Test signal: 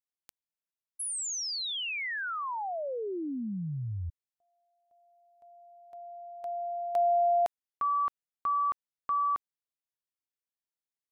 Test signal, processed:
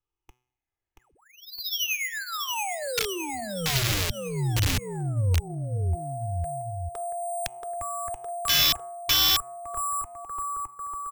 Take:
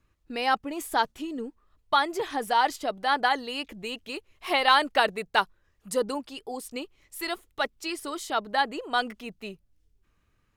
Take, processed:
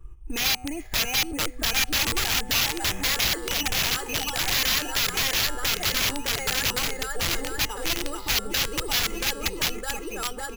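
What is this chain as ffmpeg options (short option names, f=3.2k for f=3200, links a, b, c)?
-filter_complex "[0:a]afftfilt=real='re*pow(10,13/40*sin(2*PI*(0.65*log(max(b,1)*sr/1024/100)/log(2)-(-0.56)*(pts-256)/sr)))':imag='im*pow(10,13/40*sin(2*PI*(0.65*log(max(b,1)*sr/1024/100)/log(2)-(-0.56)*(pts-256)/sr)))':win_size=1024:overlap=0.75,lowpass=2.9k,aemphasis=mode=reproduction:type=bsi,aecho=1:1:2.4:0.59,bandreject=f=124.8:t=h:w=4,bandreject=f=249.6:t=h:w=4,bandreject=f=374.4:t=h:w=4,bandreject=f=499.2:t=h:w=4,bandreject=f=624:t=h:w=4,bandreject=f=748.8:t=h:w=4,bandreject=f=873.6:t=h:w=4,bandreject=f=998.4:t=h:w=4,bandreject=f=1.1232k:t=h:w=4,bandreject=f=1.248k:t=h:w=4,bandreject=f=1.3728k:t=h:w=4,bandreject=f=1.4976k:t=h:w=4,bandreject=f=1.6224k:t=h:w=4,bandreject=f=1.7472k:t=h:w=4,bandreject=f=1.872k:t=h:w=4,bandreject=f=1.9968k:t=h:w=4,bandreject=f=2.1216k:t=h:w=4,bandreject=f=2.2464k:t=h:w=4,bandreject=f=2.3712k:t=h:w=4,bandreject=f=2.496k:t=h:w=4,bandreject=f=2.6208k:t=h:w=4,bandreject=f=2.7456k:t=h:w=4,bandreject=f=2.8704k:t=h:w=4,bandreject=f=2.9952k:t=h:w=4,bandreject=f=3.12k:t=h:w=4,bandreject=f=3.2448k:t=h:w=4,bandreject=f=3.3696k:t=h:w=4,bandreject=f=3.4944k:t=h:w=4,bandreject=f=3.6192k:t=h:w=4,bandreject=f=3.744k:t=h:w=4,bandreject=f=3.8688k:t=h:w=4,bandreject=f=3.9936k:t=h:w=4,bandreject=f=4.1184k:t=h:w=4,bandreject=f=4.2432k:t=h:w=4,bandreject=f=4.368k:t=h:w=4,bandreject=f=4.4928k:t=h:w=4,bandreject=f=4.6176k:t=h:w=4,bandreject=f=4.7424k:t=h:w=4,bandreject=f=4.8672k:t=h:w=4,asplit=2[a][b];[b]aecho=0:1:680|1292|1843|2339|2785:0.631|0.398|0.251|0.158|0.1[c];[a][c]amix=inputs=2:normalize=0,alimiter=limit=-13.5dB:level=0:latency=1:release=217,acrusher=samples=5:mix=1:aa=0.000001,aeval=exprs='(mod(10.6*val(0)+1,2)-1)/10.6':c=same,acrossover=split=140|2100[d][e][f];[e]acompressor=threshold=-35dB:ratio=10:attack=0.14:release=210:knee=2.83:detection=peak[g];[d][g][f]amix=inputs=3:normalize=0,volume=5.5dB"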